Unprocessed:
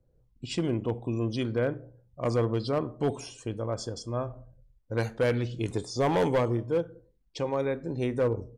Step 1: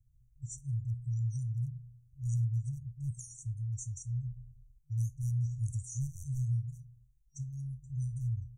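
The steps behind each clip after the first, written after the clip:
brick-wall band-stop 140–5,700 Hz
level +1 dB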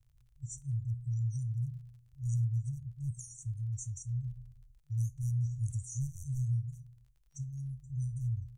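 surface crackle 38 per second −59 dBFS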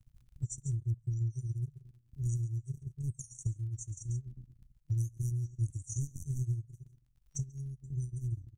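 single-tap delay 139 ms −11.5 dB
dynamic equaliser 140 Hz, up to −4 dB, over −43 dBFS, Q 0.97
transient designer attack +10 dB, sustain −11 dB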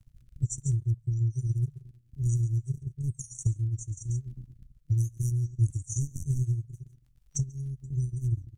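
rotating-speaker cabinet horn 1.1 Hz, later 6.7 Hz, at 0:05.32
level +8 dB

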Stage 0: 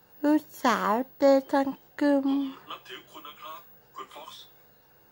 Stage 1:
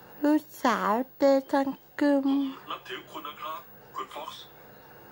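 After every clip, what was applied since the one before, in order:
multiband upward and downward compressor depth 40%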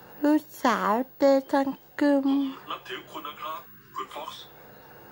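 gain on a spectral selection 0:03.66–0:04.05, 430–960 Hz −29 dB
level +1.5 dB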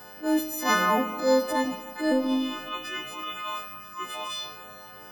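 every partial snapped to a pitch grid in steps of 3 semitones
transient designer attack −10 dB, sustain +3 dB
four-comb reverb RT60 2.8 s, combs from 32 ms, DRR 8 dB

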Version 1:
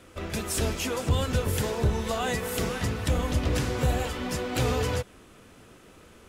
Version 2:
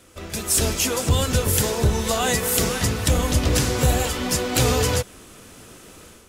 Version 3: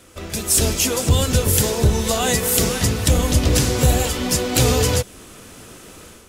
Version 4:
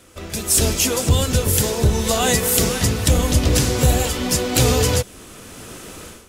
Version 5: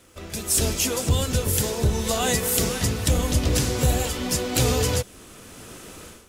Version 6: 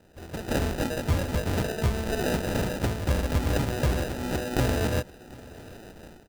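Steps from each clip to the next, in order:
bass and treble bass 0 dB, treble +9 dB; automatic gain control gain up to 8 dB; level −1.5 dB
dynamic equaliser 1,300 Hz, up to −4 dB, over −40 dBFS, Q 0.72; level +3.5 dB
automatic gain control gain up to 6 dB; level −1 dB
surface crackle 170 per second −43 dBFS; level −5 dB
decimation without filtering 40×; single-tap delay 740 ms −22 dB; level −4 dB

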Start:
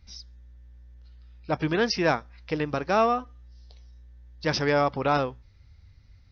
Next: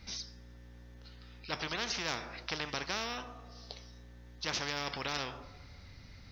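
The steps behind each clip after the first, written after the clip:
coupled-rooms reverb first 0.39 s, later 1.6 s, from −26 dB, DRR 15.5 dB
every bin compressed towards the loudest bin 4 to 1
level −7.5 dB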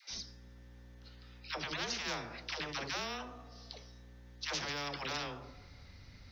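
all-pass dispersion lows, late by 111 ms, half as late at 470 Hz
level −2 dB

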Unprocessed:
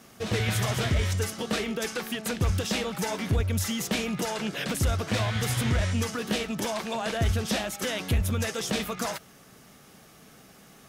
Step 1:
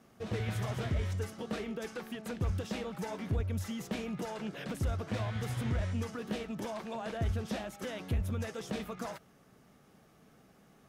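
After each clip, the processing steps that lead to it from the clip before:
high-shelf EQ 2,000 Hz −10.5 dB
level −7 dB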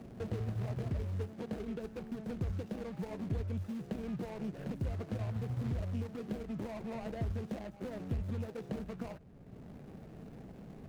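running median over 41 samples
multiband upward and downward compressor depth 70%
level −1.5 dB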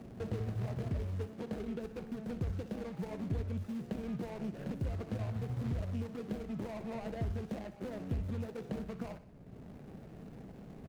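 repeating echo 61 ms, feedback 54%, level −14.5 dB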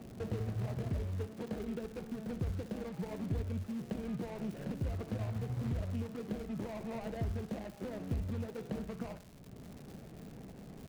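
surface crackle 200 per second −45 dBFS

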